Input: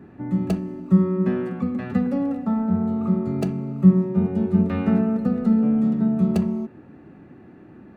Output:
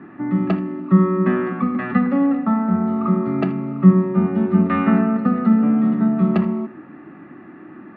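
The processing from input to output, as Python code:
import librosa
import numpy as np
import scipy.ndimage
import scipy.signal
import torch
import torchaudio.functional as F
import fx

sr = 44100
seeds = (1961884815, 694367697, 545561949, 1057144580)

p1 = fx.cabinet(x, sr, low_hz=190.0, low_slope=12, high_hz=3300.0, hz=(320.0, 460.0, 1200.0, 1900.0), db=(5, -9, 10, 7))
p2 = p1 + fx.echo_single(p1, sr, ms=79, db=-18.5, dry=0)
y = p2 * librosa.db_to_amplitude(5.5)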